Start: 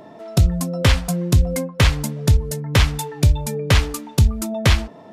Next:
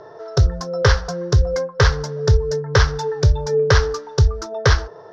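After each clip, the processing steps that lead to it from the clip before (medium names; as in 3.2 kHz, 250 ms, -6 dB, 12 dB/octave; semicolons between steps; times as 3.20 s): FFT filter 140 Hz 0 dB, 240 Hz -23 dB, 430 Hz +11 dB, 640 Hz -1 dB, 1.6 kHz +8 dB, 2.4 kHz -12 dB, 5.7 kHz +6 dB, 8.8 kHz -30 dB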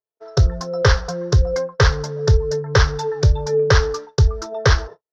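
gate -32 dBFS, range -58 dB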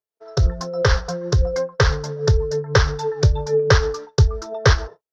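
tremolo 6.2 Hz, depth 43%; trim +1 dB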